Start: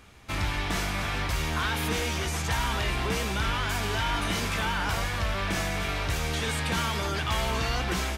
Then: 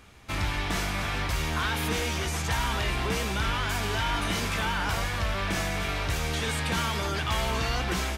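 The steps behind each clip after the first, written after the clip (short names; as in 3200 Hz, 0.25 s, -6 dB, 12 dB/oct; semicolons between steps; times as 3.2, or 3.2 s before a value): nothing audible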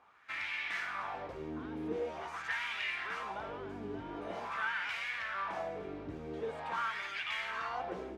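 wah 0.45 Hz 300–2300 Hz, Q 3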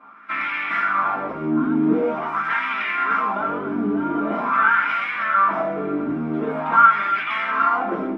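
small resonant body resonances 250/1400 Hz, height 7 dB, ringing for 30 ms; reverb RT60 0.15 s, pre-delay 3 ms, DRR -7 dB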